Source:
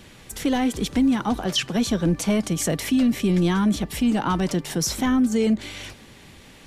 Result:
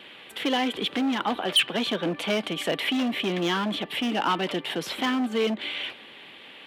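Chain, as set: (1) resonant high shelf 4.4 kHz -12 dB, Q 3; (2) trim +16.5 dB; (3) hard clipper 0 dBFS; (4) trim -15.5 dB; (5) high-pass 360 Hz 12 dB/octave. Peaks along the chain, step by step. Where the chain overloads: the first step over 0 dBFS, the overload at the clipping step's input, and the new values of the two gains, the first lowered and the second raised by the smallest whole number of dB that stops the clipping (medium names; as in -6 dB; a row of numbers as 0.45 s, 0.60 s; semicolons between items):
-7.5 dBFS, +9.0 dBFS, 0.0 dBFS, -15.5 dBFS, -12.0 dBFS; step 2, 9.0 dB; step 2 +7.5 dB, step 4 -6.5 dB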